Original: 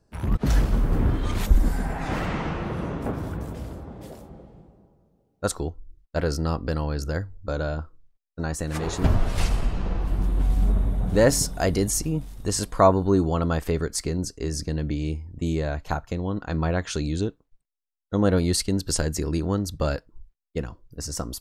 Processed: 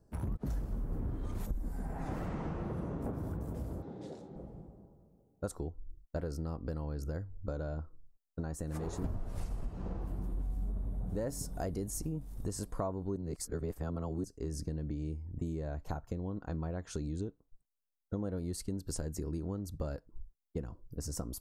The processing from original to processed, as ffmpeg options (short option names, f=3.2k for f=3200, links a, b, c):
-filter_complex "[0:a]asettb=1/sr,asplit=3[a][b][c];[a]atrim=end=3.824[d];[b]atrim=start=3.82:end=4.36,asetpts=PTS-STARTPTS,afade=t=in:d=0.004:c=qsin,afade=t=out:st=0.536:d=0.004:c=qsin,highpass=180,equalizer=f=230:t=q:w=4:g=-5,equalizer=f=630:t=q:w=4:g=-7,equalizer=f=1.1k:t=q:w=4:g=-8,equalizer=f=3.8k:t=q:w=4:g=9,lowpass=f=6.9k:w=0.5412,lowpass=f=6.9k:w=1.3066[e];[c]atrim=start=4.356[f];[d][e]acrossfade=d=0.004:c1=hsin:c2=qsin[g];[g][f]acrossfade=d=0.004:c1=qsin:c2=hsin,asettb=1/sr,asplit=3[h][i][j];[h]atrim=end=9.684[k];[i]atrim=start=9.68:end=10.34,asetpts=PTS-STARTPTS,afade=t=in:d=0.004:c=qsin,afade=t=out:st=0.656:d=0.004:c=qsin,highpass=f=66:p=1[l];[j]atrim=start=10.336[m];[k][l]acrossfade=d=0.004:c1=hsin:c2=qsin[n];[n][m]acrossfade=d=0.004:c1=qsin:c2=hsin,asplit=3[o][p][q];[o]atrim=end=13.162[r];[p]atrim=start=13.158:end=14.242,asetpts=PTS-STARTPTS,areverse[s];[q]atrim=start=14.238[t];[r][s]acrossfade=d=0.004:c1=hsin:c2=hsin[u];[u][t]acrossfade=d=0.004:c1=hsin:c2=hsin,equalizer=f=3k:t=o:w=2.4:g=-13,acompressor=threshold=-35dB:ratio=5"